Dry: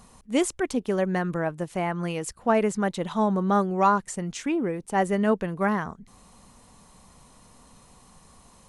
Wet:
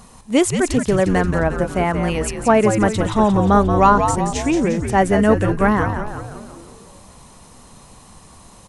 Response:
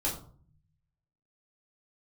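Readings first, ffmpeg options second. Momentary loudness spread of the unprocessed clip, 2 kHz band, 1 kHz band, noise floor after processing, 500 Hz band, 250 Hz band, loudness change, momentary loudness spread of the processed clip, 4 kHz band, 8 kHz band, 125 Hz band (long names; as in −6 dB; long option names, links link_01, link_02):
7 LU, +8.5 dB, +8.5 dB, −45 dBFS, +8.5 dB, +8.5 dB, +8.5 dB, 7 LU, +9.0 dB, +9.0 dB, +11.5 dB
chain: -filter_complex "[0:a]acontrast=23,asplit=8[link_01][link_02][link_03][link_04][link_05][link_06][link_07][link_08];[link_02]adelay=177,afreqshift=-110,volume=-6.5dB[link_09];[link_03]adelay=354,afreqshift=-220,volume=-11.4dB[link_10];[link_04]adelay=531,afreqshift=-330,volume=-16.3dB[link_11];[link_05]adelay=708,afreqshift=-440,volume=-21.1dB[link_12];[link_06]adelay=885,afreqshift=-550,volume=-26dB[link_13];[link_07]adelay=1062,afreqshift=-660,volume=-30.9dB[link_14];[link_08]adelay=1239,afreqshift=-770,volume=-35.8dB[link_15];[link_01][link_09][link_10][link_11][link_12][link_13][link_14][link_15]amix=inputs=8:normalize=0,volume=3dB"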